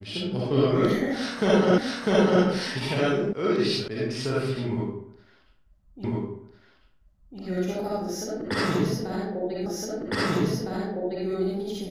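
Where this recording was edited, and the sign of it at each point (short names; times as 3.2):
1.78 repeat of the last 0.65 s
3.33 sound cut off
3.88 sound cut off
6.04 repeat of the last 1.35 s
9.66 repeat of the last 1.61 s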